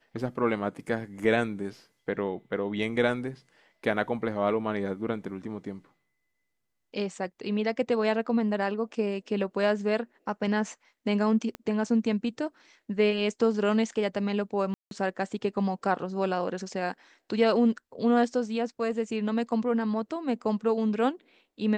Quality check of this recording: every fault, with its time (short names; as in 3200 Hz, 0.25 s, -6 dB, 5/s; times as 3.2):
11.55 pop -22 dBFS
14.74–14.91 gap 0.172 s